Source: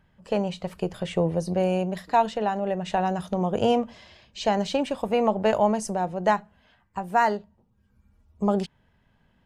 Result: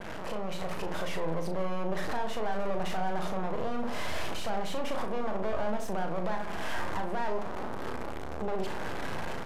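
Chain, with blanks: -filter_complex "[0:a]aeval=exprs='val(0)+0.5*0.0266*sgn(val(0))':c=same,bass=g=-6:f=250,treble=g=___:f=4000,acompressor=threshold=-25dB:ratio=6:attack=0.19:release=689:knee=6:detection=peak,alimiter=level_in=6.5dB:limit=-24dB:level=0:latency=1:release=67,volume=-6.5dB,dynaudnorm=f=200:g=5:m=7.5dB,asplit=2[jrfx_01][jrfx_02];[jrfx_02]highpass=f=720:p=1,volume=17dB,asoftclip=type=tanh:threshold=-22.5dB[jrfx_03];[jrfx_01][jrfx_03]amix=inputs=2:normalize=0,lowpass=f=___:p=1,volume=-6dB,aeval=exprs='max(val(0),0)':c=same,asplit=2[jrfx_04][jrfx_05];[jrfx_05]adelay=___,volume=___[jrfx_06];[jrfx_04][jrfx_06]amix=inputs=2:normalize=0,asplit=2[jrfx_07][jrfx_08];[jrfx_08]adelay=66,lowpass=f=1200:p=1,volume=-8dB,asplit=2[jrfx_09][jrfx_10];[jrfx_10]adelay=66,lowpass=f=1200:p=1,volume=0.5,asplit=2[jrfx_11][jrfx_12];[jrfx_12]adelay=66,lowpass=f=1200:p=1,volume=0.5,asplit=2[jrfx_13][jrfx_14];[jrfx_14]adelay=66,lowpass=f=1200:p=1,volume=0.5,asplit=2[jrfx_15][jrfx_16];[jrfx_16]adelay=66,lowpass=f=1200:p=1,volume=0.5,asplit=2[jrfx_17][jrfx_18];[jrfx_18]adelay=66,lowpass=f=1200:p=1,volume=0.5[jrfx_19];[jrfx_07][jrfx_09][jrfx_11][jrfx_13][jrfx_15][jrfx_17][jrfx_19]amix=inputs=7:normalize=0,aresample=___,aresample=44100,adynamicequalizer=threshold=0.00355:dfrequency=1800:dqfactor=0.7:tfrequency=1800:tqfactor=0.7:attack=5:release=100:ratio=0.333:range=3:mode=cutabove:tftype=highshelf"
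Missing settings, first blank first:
-2, 2500, 37, -7dB, 32000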